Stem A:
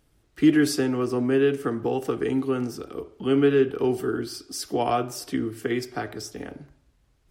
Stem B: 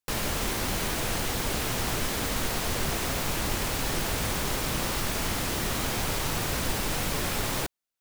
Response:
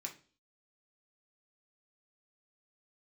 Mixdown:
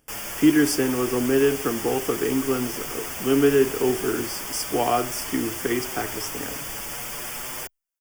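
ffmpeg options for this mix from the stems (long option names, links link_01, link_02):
-filter_complex "[0:a]lowshelf=frequency=120:gain=-7.5,volume=2dB[link_01];[1:a]lowshelf=frequency=380:gain=-11,asplit=2[link_02][link_03];[link_03]adelay=6.8,afreqshift=0.46[link_04];[link_02][link_04]amix=inputs=2:normalize=1,volume=0dB[link_05];[link_01][link_05]amix=inputs=2:normalize=0,asuperstop=centerf=4000:order=4:qfactor=3.3,highshelf=frequency=8800:gain=6"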